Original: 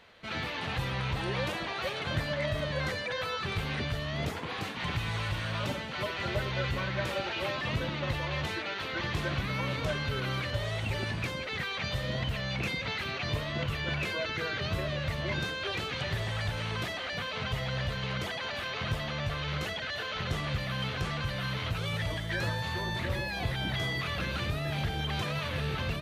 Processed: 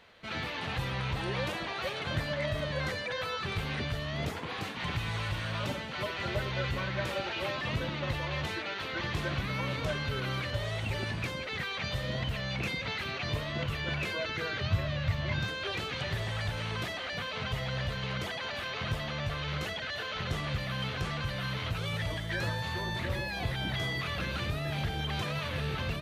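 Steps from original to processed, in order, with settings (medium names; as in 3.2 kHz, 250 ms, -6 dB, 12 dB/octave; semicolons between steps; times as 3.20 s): 14.62–15.48 s: fifteen-band graphic EQ 100 Hz +9 dB, 400 Hz -8 dB, 10 kHz -10 dB; trim -1 dB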